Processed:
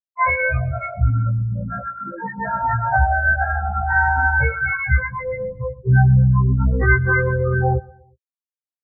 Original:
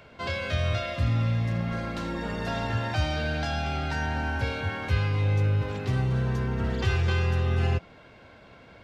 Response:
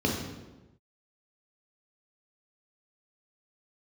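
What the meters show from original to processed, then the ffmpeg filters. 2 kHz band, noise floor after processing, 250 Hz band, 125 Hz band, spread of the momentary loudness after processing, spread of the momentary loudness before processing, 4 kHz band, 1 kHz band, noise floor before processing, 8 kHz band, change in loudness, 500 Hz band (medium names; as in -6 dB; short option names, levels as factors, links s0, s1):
+14.5 dB, under -85 dBFS, +4.5 dB, +7.5 dB, 11 LU, 6 LU, under -40 dB, +13.0 dB, -51 dBFS, no reading, +9.0 dB, +6.5 dB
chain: -filter_complex "[0:a]aeval=exprs='val(0)+0.00631*(sin(2*PI*50*n/s)+sin(2*PI*2*50*n/s)/2+sin(2*PI*3*50*n/s)/3+sin(2*PI*4*50*n/s)/4+sin(2*PI*5*50*n/s)/5)':c=same,acrossover=split=3100[s0][s1];[s1]acompressor=threshold=0.00398:ratio=4:attack=1:release=60[s2];[s0][s2]amix=inputs=2:normalize=0,equalizer=f=1300:w=0.41:g=10,bandreject=f=3200:w=15,aexciter=amount=6.6:drive=5.5:freq=5100,asplit=2[s3][s4];[s4]acrusher=bits=5:mix=0:aa=0.000001,volume=0.299[s5];[s3][s5]amix=inputs=2:normalize=0,afftfilt=real='re*gte(hypot(re,im),0.316)':imag='im*gte(hypot(re,im),0.316)':win_size=1024:overlap=0.75,asplit=2[s6][s7];[s7]aecho=0:1:121|242|363:0.075|0.0345|0.0159[s8];[s6][s8]amix=inputs=2:normalize=0,afftfilt=real='re*1.73*eq(mod(b,3),0)':imag='im*1.73*eq(mod(b,3),0)':win_size=2048:overlap=0.75,volume=2.66"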